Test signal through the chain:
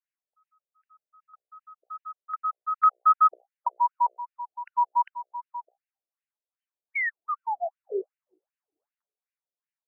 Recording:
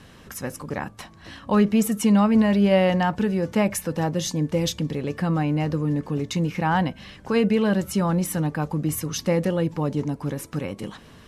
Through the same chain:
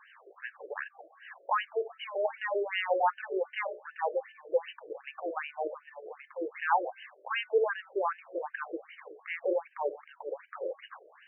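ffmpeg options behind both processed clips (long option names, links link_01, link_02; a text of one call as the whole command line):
ffmpeg -i in.wav -af "bandreject=frequency=61.26:width_type=h:width=4,bandreject=frequency=122.52:width_type=h:width=4,bandreject=frequency=183.78:width_type=h:width=4,bandreject=frequency=245.04:width_type=h:width=4,bandreject=frequency=306.3:width_type=h:width=4,bandreject=frequency=367.56:width_type=h:width=4,bandreject=frequency=428.82:width_type=h:width=4,bandreject=frequency=490.08:width_type=h:width=4,bandreject=frequency=551.34:width_type=h:width=4,bandreject=frequency=612.6:width_type=h:width=4,bandreject=frequency=673.86:width_type=h:width=4,bandreject=frequency=735.12:width_type=h:width=4,bandreject=frequency=796.38:width_type=h:width=4,afftfilt=real='re*between(b*sr/1024,470*pow(2200/470,0.5+0.5*sin(2*PI*2.6*pts/sr))/1.41,470*pow(2200/470,0.5+0.5*sin(2*PI*2.6*pts/sr))*1.41)':imag='im*between(b*sr/1024,470*pow(2200/470,0.5+0.5*sin(2*PI*2.6*pts/sr))/1.41,470*pow(2200/470,0.5+0.5*sin(2*PI*2.6*pts/sr))*1.41)':win_size=1024:overlap=0.75" out.wav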